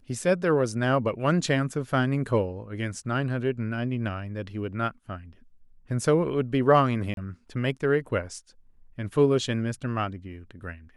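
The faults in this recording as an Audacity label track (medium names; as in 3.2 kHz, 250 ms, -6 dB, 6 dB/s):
7.140000	7.170000	dropout 32 ms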